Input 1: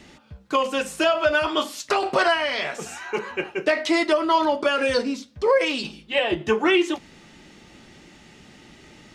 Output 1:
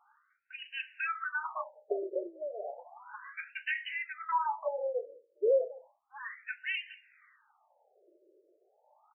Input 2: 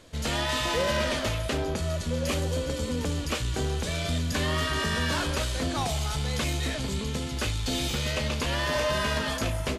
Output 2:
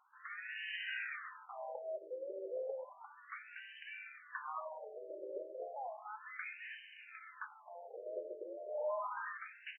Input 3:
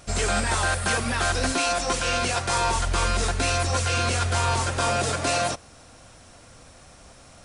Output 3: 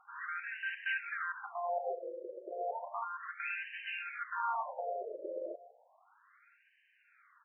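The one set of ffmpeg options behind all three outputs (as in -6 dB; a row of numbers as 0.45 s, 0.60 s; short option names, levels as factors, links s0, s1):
-af "tremolo=f=1.1:d=0.4,aecho=1:1:199:0.0708,afftfilt=real='re*between(b*sr/1024,440*pow(2200/440,0.5+0.5*sin(2*PI*0.33*pts/sr))/1.41,440*pow(2200/440,0.5+0.5*sin(2*PI*0.33*pts/sr))*1.41)':imag='im*between(b*sr/1024,440*pow(2200/440,0.5+0.5*sin(2*PI*0.33*pts/sr))/1.41,440*pow(2200/440,0.5+0.5*sin(2*PI*0.33*pts/sr))*1.41)':win_size=1024:overlap=0.75,volume=0.473"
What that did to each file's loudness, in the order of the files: -13.0 LU, -16.5 LU, -15.5 LU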